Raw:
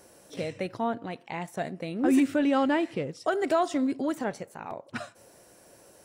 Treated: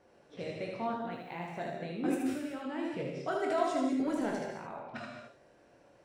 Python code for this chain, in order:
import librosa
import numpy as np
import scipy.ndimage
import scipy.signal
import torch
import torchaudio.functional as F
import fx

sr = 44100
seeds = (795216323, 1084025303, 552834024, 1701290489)

y = fx.env_lowpass(x, sr, base_hz=2900.0, full_db=-22.0)
y = fx.quant_dither(y, sr, seeds[0], bits=12, dither='triangular', at=(1.11, 1.59))
y = fx.over_compress(y, sr, threshold_db=-30.0, ratio=-1.0, at=(2.14, 2.87), fade=0.02)
y = fx.leveller(y, sr, passes=1, at=(3.95, 4.61))
y = fx.room_early_taps(y, sr, ms=(23, 77), db=(-5.5, -4.0))
y = fx.rev_gated(y, sr, seeds[1], gate_ms=240, shape='flat', drr_db=2.0)
y = F.gain(torch.from_numpy(y), -9.0).numpy()